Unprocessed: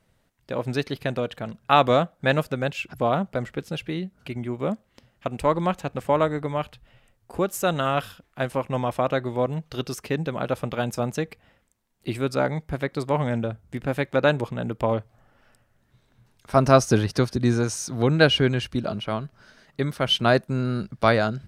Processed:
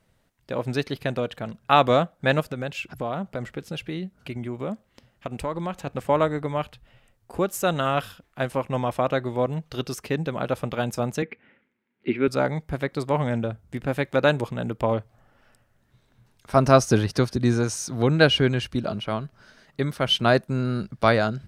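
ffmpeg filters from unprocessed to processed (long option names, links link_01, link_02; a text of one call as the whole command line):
ffmpeg -i in.wav -filter_complex "[0:a]asettb=1/sr,asplit=3[link_01][link_02][link_03];[link_01]atrim=end=2.404[link_04];[link_02]atrim=start=2.4:end=5.87,asetpts=PTS-STARTPTS,afade=type=in:duration=0.004:curve=qsin,afade=type=out:start_time=3.466:duration=0.004:curve=qsin,acompressor=threshold=-27dB:ratio=2.5:attack=3.2:release=140:knee=1:detection=peak[link_05];[link_03]atrim=start=5.866[link_06];[link_04][link_05]acrossfade=duration=0.004:curve1=hsin:curve2=qsin[link_07];[link_07][link_06]acrossfade=duration=0.004:curve1=qsin:curve2=hsin,asettb=1/sr,asplit=3[link_08][link_09][link_10];[link_08]atrim=end=11.224[link_11];[link_09]atrim=start=11.22:end=12.28,asetpts=PTS-STARTPTS,afade=type=in:duration=0.004:curve=qsin,afade=type=out:start_time=1.056:duration=0.004:curve=qsin,highpass=180,equalizer=frequency=240:width_type=q:width=4:gain=8,equalizer=frequency=380:width_type=q:width=4:gain=7,equalizer=frequency=690:width_type=q:width=4:gain=-9,equalizer=frequency=1100:width_type=q:width=4:gain=-5,equalizer=frequency=1500:width_type=q:width=4:gain=4,equalizer=frequency=2200:width_type=q:width=4:gain=8,lowpass=frequency=3000:width=0.5412,lowpass=frequency=3000:width=1.3066[link_12];[link_10]atrim=start=12.276[link_13];[link_11][link_12]acrossfade=duration=0.004:curve1=hsin:curve2=qsin[link_14];[link_14][link_13]acrossfade=duration=0.004:curve1=qsin:curve2=hsin,asettb=1/sr,asplit=3[link_15][link_16][link_17];[link_15]atrim=end=14.054[link_18];[link_16]atrim=start=14.05:end=14.71,asetpts=PTS-STARTPTS,afade=type=in:duration=0.004:curve=qsin,afade=type=out:start_time=0.656:duration=0.004:curve=qsin,highshelf=frequency=4700:gain=4[link_19];[link_17]atrim=start=14.706[link_20];[link_18][link_19]acrossfade=duration=0.004:curve1=hsin:curve2=qsin[link_21];[link_21][link_20]acrossfade=duration=0.004:curve1=qsin:curve2=hsin" out.wav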